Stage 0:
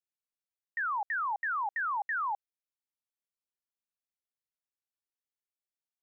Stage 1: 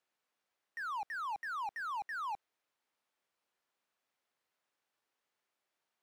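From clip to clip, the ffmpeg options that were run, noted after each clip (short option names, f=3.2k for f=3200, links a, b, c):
-filter_complex "[0:a]asplit=2[a][b];[b]highpass=f=720:p=1,volume=31dB,asoftclip=type=tanh:threshold=-28.5dB[c];[a][c]amix=inputs=2:normalize=0,lowpass=f=1.1k:p=1,volume=-6dB,volume=-4.5dB"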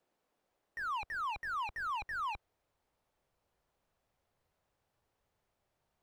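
-filter_complex "[0:a]asubboost=boost=10:cutoff=92,acrossover=split=790|2600[a][b][c];[a]aeval=exprs='0.00944*sin(PI/2*2.82*val(0)/0.00944)':c=same[d];[d][b][c]amix=inputs=3:normalize=0"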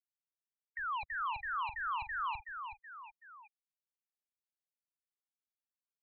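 -filter_complex "[0:a]aecho=1:1:375|750|1125:0.447|0.116|0.0302,acrossover=split=760[a][b];[b]acompressor=mode=upward:threshold=-42dB:ratio=2.5[c];[a][c]amix=inputs=2:normalize=0,afftfilt=real='re*gte(hypot(re,im),0.00891)':imag='im*gte(hypot(re,im),0.00891)':win_size=1024:overlap=0.75"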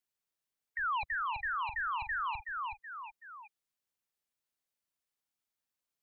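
-af "alimiter=level_in=10.5dB:limit=-24dB:level=0:latency=1:release=109,volume=-10.5dB,volume=5.5dB"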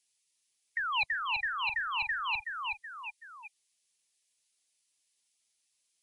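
-filter_complex "[0:a]lowshelf=f=83:g=-9,acrossover=split=220[a][b];[b]aexciter=amount=4:drive=6.8:freq=2.1k[c];[a][c]amix=inputs=2:normalize=0" -ar 24000 -c:a libmp3lame -b:a 56k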